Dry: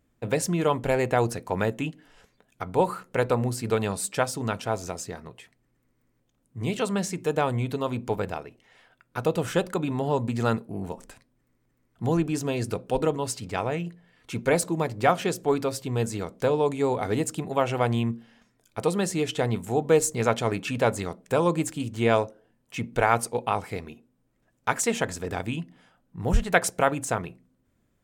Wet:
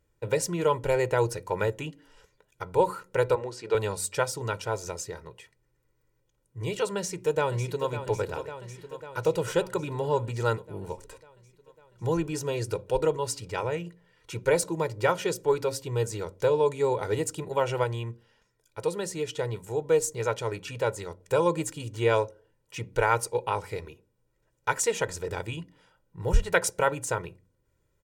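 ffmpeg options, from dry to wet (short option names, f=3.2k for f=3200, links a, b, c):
-filter_complex "[0:a]asettb=1/sr,asplit=3[a][b][c];[a]atrim=end=3.354[d];[b]atrim=start=3.35:end=3.75,asetpts=PTS-STARTPTS,afade=t=in:d=0.004:c=qsin,afade=t=out:st=0.396:d=0.004:c=qsin,highpass=280,lowpass=4.8k[e];[c]atrim=start=3.746[f];[d][e]acrossfade=d=0.004:c1=hsin:c2=qsin[g];[g][f]acrossfade=d=0.004:c1=qsin:c2=hsin,asplit=2[h][i];[i]afade=t=in:st=6.96:d=0.01,afade=t=out:st=7.91:d=0.01,aecho=0:1:550|1100|1650|2200|2750|3300|3850|4400|4950|5500:0.298538|0.208977|0.146284|0.102399|0.071679|0.0501753|0.0351227|0.0245859|0.0172101|0.0120471[j];[h][j]amix=inputs=2:normalize=0,asplit=3[k][l][m];[k]atrim=end=17.842[n];[l]atrim=start=17.838:end=21.202,asetpts=PTS-STARTPTS,volume=-3.5dB[o];[m]atrim=start=21.198[p];[n][o]acrossfade=d=0.004:c1=hsin:c2=hsin[q];[q][p]acrossfade=d=0.004:c1=hsin:c2=hsin,equalizer=f=6.1k:t=o:w=0.77:g=2,aecho=1:1:2.1:0.79,bandreject=f=93.5:t=h:w=4,bandreject=f=187:t=h:w=4,bandreject=f=280.5:t=h:w=4,volume=-4dB"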